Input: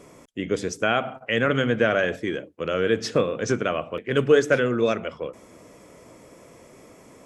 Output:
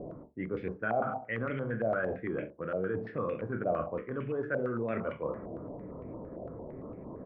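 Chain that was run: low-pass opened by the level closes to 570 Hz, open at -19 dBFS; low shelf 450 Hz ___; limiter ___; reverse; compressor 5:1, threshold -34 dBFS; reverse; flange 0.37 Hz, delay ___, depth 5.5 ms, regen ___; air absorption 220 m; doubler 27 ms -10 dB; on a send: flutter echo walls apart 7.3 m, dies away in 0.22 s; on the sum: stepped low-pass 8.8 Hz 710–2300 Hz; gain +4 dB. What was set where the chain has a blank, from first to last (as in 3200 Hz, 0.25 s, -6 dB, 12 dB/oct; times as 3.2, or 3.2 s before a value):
+9.5 dB, -8 dBFS, 5.7 ms, -78%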